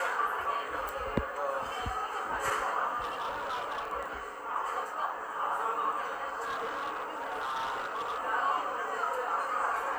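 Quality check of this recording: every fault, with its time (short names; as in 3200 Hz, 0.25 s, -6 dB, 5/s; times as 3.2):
0.89 pop
3.01–3.88 clipped -31.5 dBFS
6.42–8.19 clipped -31 dBFS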